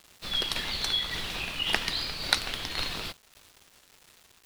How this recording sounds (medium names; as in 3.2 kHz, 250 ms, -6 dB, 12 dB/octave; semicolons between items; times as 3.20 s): a quantiser's noise floor 8-bit, dither none; tremolo saw down 1.8 Hz, depth 35%